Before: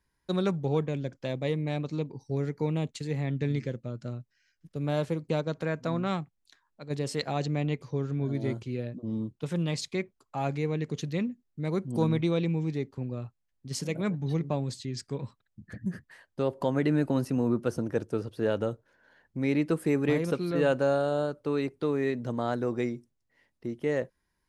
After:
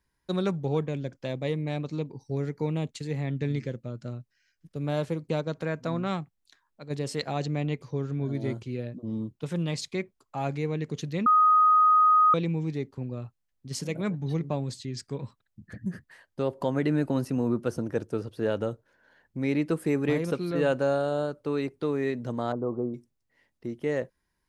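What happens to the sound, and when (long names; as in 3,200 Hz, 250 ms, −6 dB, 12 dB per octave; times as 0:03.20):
0:11.26–0:12.34: beep over 1,250 Hz −16 dBFS
0:22.52–0:22.94: elliptic low-pass filter 1,200 Hz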